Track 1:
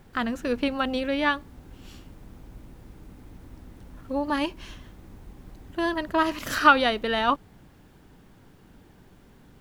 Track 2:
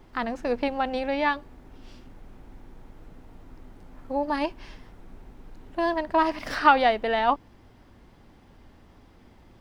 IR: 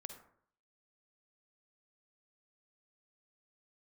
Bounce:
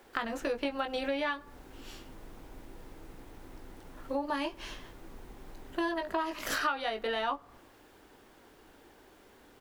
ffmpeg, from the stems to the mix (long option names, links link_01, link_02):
-filter_complex "[0:a]highpass=frequency=320:width=0.5412,highpass=frequency=320:width=1.3066,volume=0dB,asplit=2[link_01][link_02];[link_02]volume=-13.5dB[link_03];[1:a]agate=range=-10dB:threshold=-47dB:ratio=16:detection=peak,adelay=20,volume=-3.5dB[link_04];[2:a]atrim=start_sample=2205[link_05];[link_03][link_05]afir=irnorm=-1:irlink=0[link_06];[link_01][link_04][link_06]amix=inputs=3:normalize=0,acompressor=threshold=-30dB:ratio=5"